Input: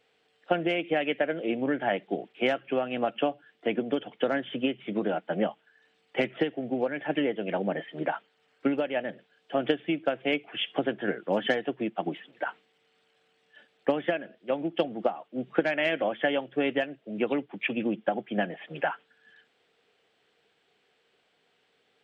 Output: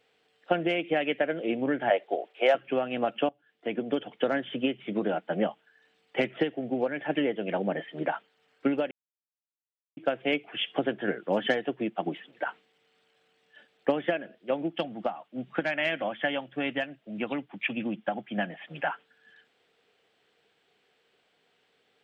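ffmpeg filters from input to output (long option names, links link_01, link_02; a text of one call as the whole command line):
ffmpeg -i in.wav -filter_complex "[0:a]asettb=1/sr,asplit=3[link_01][link_02][link_03];[link_01]atrim=end=1.904[link_04];[link_02]atrim=start=1.9:end=2.55,asetpts=PTS-STARTPTS,afade=type=in:duration=0.004:curve=qsin,afade=type=out:start_time=0.646:duration=0.004:curve=qsin,highpass=frequency=560:width_type=q:width=2.2[link_05];[link_03]atrim=start=2.546[link_06];[link_04][link_05]acrossfade=duration=0.004:curve1=hsin:curve2=qsin[link_07];[link_07][link_06]acrossfade=duration=0.004:curve1=qsin:curve2=hsin,asettb=1/sr,asplit=3[link_08][link_09][link_10];[link_08]atrim=end=14.714[link_11];[link_09]atrim=start=14.71:end=18.87,asetpts=PTS-STARTPTS,afade=type=in:duration=0.004:curve=qsin,afade=type=out:start_time=4.156:duration=0.004:curve=qsin,equalizer=frequency=420:width_type=o:width=0.77:gain=-9.5[link_12];[link_10]atrim=start=18.866[link_13];[link_11][link_12]acrossfade=duration=0.004:curve1=hsin:curve2=qsin[link_14];[link_14][link_13]acrossfade=duration=0.004:curve1=qsin:curve2=hsin,asplit=4[link_15][link_16][link_17][link_18];[link_15]atrim=end=3.29,asetpts=PTS-STARTPTS,afade=type=out:start_time=3.286:duration=0.004:curve=hsin:silence=0.1[link_19];[link_16]atrim=start=3.29:end=8.91,asetpts=PTS-STARTPTS,afade=type=in:duration=0.67:silence=0.1,afade=type=out:start_time=5.616:duration=0.004:curve=hsin[link_20];[link_17]atrim=start=8.91:end=9.97,asetpts=PTS-STARTPTS,volume=0[link_21];[link_18]atrim=start=9.97,asetpts=PTS-STARTPTS,afade=type=in:duration=0.004:curve=hsin[link_22];[link_19][link_20][link_21][link_22]concat=n=4:v=0:a=1" out.wav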